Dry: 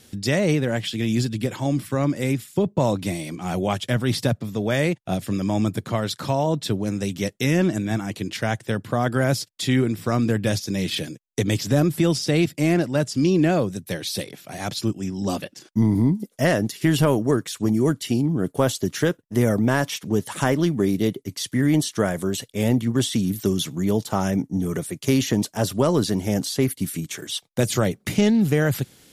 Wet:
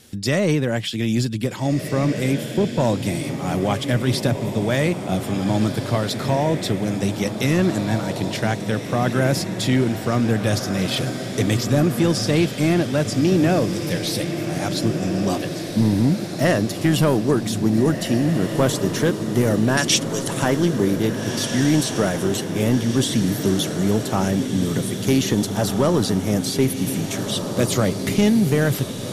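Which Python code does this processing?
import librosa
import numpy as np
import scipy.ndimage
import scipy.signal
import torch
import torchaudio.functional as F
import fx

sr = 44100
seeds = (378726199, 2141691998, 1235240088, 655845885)

p1 = 10.0 ** (-9.5 / 20.0) * np.tanh(x / 10.0 ** (-9.5 / 20.0))
p2 = fx.weighting(p1, sr, curve='ITU-R 468', at=(19.77, 20.28))
p3 = p2 + fx.echo_diffused(p2, sr, ms=1727, feedback_pct=53, wet_db=-7, dry=0)
y = F.gain(torch.from_numpy(p3), 2.0).numpy()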